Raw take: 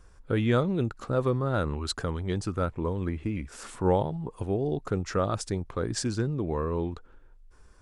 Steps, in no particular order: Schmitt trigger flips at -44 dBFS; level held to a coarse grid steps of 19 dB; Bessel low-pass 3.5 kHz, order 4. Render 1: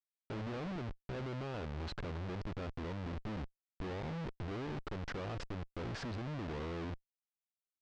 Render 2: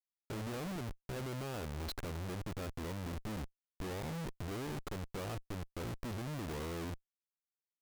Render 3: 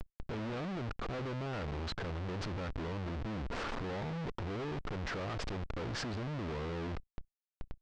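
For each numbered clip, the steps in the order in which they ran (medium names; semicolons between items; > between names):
level held to a coarse grid > Schmitt trigger > Bessel low-pass; Bessel low-pass > level held to a coarse grid > Schmitt trigger; Schmitt trigger > Bessel low-pass > level held to a coarse grid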